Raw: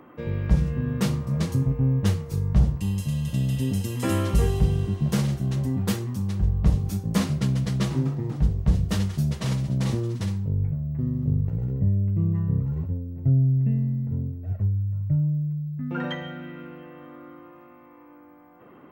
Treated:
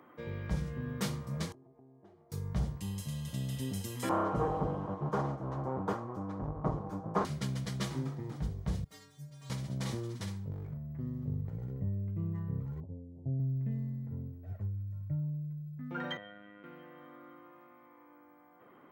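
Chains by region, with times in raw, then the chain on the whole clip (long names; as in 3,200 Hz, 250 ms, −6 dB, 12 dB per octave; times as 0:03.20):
0:01.52–0:02.32: downward compressor 4 to 1, threshold −27 dBFS + pair of resonant band-passes 500 Hz, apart 0.83 octaves
0:04.09–0:07.25: lower of the sound and its delayed copy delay 6.4 ms + drawn EQ curve 170 Hz 0 dB, 370 Hz +5 dB, 640 Hz +8 dB, 1,100 Hz +12 dB, 1,900 Hz −7 dB, 3,900 Hz −17 dB, 6,500 Hz −17 dB, 9,700 Hz −25 dB
0:08.84–0:09.50: converter with a step at zero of −40 dBFS + stiff-string resonator 140 Hz, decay 0.74 s, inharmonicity 0.008
0:10.50–0:10.96: hard clipping −20.5 dBFS + double-tracking delay 36 ms −8 dB
0:12.80–0:13.40: Butterworth low-pass 800 Hz + low-shelf EQ 120 Hz −6 dB
0:16.17–0:16.64: mains-hum notches 50/100/150/200/250/300 Hz + phases set to zero 102 Hz + high-frequency loss of the air 320 metres
whole clip: high-pass filter 57 Hz; low-shelf EQ 450 Hz −8 dB; notch filter 2,700 Hz, Q 11; level −5 dB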